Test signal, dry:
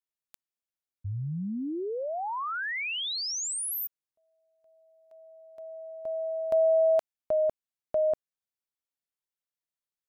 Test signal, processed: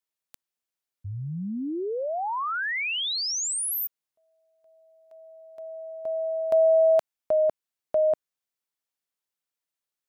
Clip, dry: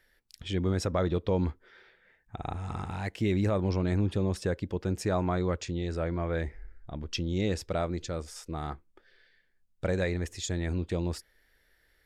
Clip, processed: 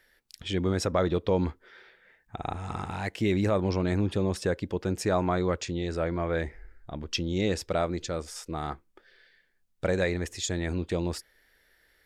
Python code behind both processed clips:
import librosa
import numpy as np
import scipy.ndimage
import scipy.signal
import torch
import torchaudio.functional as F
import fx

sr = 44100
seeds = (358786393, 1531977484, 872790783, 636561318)

y = fx.low_shelf(x, sr, hz=160.0, db=-7.0)
y = y * librosa.db_to_amplitude(4.0)